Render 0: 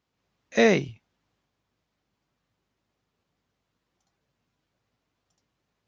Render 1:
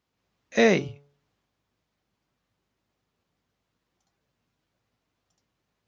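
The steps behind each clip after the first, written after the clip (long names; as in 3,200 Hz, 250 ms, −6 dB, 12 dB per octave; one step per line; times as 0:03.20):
hum removal 142.6 Hz, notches 10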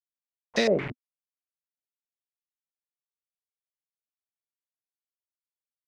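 downward compressor 16 to 1, threshold −21 dBFS, peak gain reduction 8.5 dB
bit reduction 6 bits
low-pass on a step sequencer 8.9 Hz 250–4,900 Hz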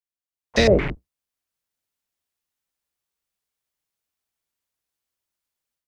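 sub-octave generator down 2 octaves, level −1 dB
automatic gain control gain up to 13.5 dB
level −2.5 dB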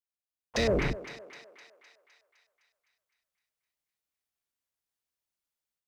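leveller curve on the samples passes 1
brickwall limiter −15 dBFS, peak gain reduction 9.5 dB
feedback echo with a high-pass in the loop 256 ms, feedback 61%, high-pass 490 Hz, level −12 dB
level −4.5 dB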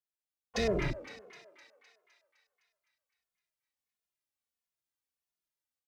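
barber-pole flanger 2.4 ms −1.5 Hz
level −1.5 dB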